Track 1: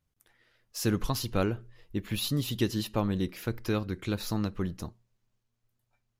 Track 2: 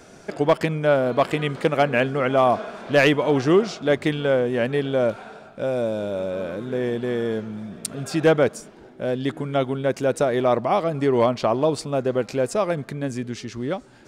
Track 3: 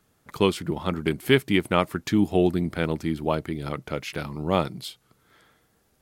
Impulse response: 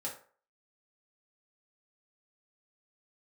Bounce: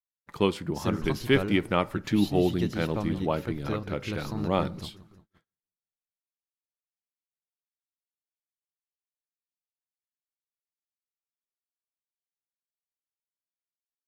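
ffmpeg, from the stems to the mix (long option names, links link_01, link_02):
-filter_complex "[0:a]volume=-3.5dB,asplit=2[link_01][link_02];[link_02]volume=-15dB[link_03];[2:a]agate=range=-33dB:threshold=-55dB:ratio=3:detection=peak,volume=-4dB,asplit=2[link_04][link_05];[link_05]volume=-14dB[link_06];[3:a]atrim=start_sample=2205[link_07];[link_06][link_07]afir=irnorm=-1:irlink=0[link_08];[link_03]aecho=0:1:175|350|525|700|875|1050|1225|1400:1|0.55|0.303|0.166|0.0915|0.0503|0.0277|0.0152[link_09];[link_01][link_04][link_08][link_09]amix=inputs=4:normalize=0,agate=range=-36dB:threshold=-56dB:ratio=16:detection=peak,highshelf=frequency=6000:gain=-8.5"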